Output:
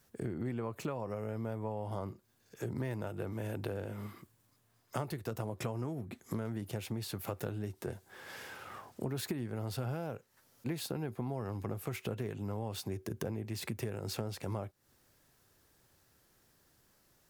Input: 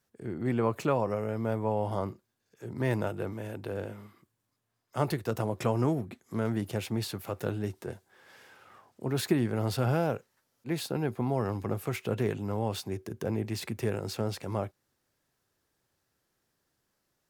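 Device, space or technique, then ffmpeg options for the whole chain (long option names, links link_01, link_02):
ASMR close-microphone chain: -af "lowshelf=frequency=100:gain=6,acompressor=threshold=-42dB:ratio=10,highshelf=frequency=10000:gain=5.5,volume=7.5dB"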